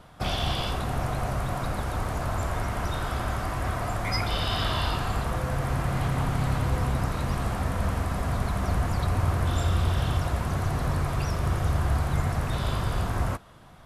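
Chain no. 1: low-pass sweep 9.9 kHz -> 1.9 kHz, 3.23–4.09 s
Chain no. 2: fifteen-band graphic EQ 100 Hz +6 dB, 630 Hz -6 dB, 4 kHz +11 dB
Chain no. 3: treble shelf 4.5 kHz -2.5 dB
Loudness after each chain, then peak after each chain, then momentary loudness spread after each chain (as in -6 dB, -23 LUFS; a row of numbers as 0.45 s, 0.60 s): -27.5 LUFS, -25.5 LUFS, -28.0 LUFS; -12.5 dBFS, -10.0 dBFS, -13.0 dBFS; 4 LU, 6 LU, 4 LU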